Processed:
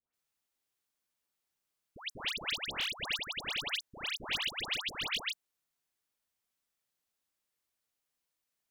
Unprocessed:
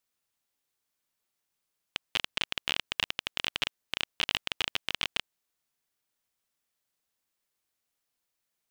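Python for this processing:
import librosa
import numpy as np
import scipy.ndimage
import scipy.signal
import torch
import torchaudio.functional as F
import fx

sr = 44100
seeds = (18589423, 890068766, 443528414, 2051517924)

y = fx.dispersion(x, sr, late='highs', ms=139.0, hz=1400.0)
y = y * librosa.db_to_amplitude(-3.0)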